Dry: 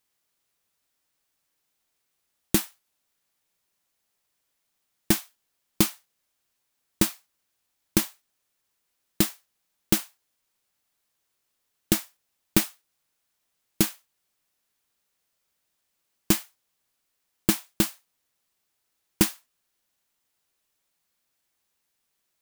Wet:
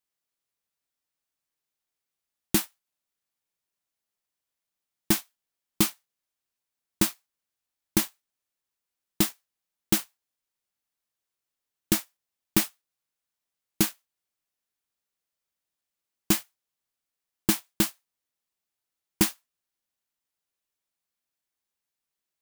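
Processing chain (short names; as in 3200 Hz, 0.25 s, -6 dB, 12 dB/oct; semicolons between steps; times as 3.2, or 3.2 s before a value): sample leveller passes 2; gain -6.5 dB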